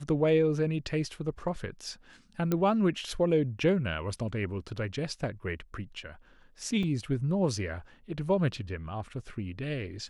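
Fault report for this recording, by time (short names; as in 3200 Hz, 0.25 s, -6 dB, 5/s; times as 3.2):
2.52 pop -15 dBFS
6.83 gap 2.9 ms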